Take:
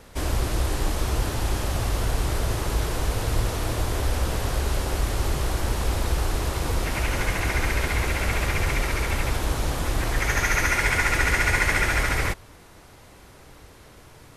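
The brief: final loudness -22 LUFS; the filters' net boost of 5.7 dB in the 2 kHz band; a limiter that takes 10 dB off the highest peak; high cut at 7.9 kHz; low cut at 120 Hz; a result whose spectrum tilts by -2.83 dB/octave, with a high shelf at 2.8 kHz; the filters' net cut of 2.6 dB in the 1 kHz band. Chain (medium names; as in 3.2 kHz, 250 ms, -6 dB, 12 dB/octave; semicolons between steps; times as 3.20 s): high-pass 120 Hz; low-pass 7.9 kHz; peaking EQ 1 kHz -7.5 dB; peaking EQ 2 kHz +7 dB; treble shelf 2.8 kHz +4 dB; trim +3.5 dB; peak limiter -10.5 dBFS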